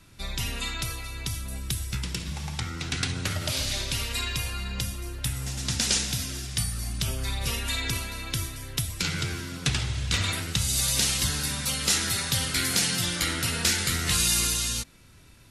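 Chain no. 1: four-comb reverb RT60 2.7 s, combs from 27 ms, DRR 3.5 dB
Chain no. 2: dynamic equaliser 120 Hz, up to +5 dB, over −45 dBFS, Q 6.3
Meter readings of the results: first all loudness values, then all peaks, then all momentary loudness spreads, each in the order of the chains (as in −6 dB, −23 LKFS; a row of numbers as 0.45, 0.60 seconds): −25.5, −27.0 LKFS; −8.5, −9.0 dBFS; 9, 9 LU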